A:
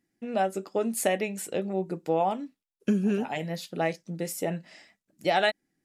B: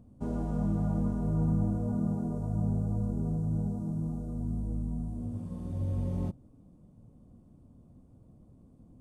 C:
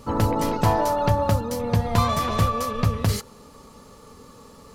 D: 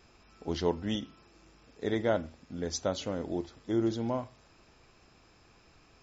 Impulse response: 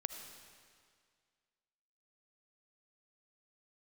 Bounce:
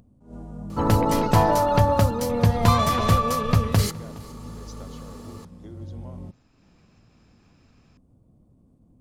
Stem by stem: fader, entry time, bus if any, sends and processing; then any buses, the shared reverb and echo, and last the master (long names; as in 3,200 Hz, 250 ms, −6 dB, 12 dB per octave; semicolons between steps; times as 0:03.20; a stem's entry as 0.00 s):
muted
−6.0 dB, 0.00 s, no send, no echo send, level that may rise only so fast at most 160 dB per second
+2.0 dB, 0.70 s, no send, echo send −22.5 dB, no processing
−7.0 dB, 1.95 s, no send, no echo send, downward compressor 4 to 1, threshold −37 dBFS, peak gain reduction 12.5 dB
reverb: not used
echo: single-tap delay 416 ms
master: upward compression, threshold −50 dBFS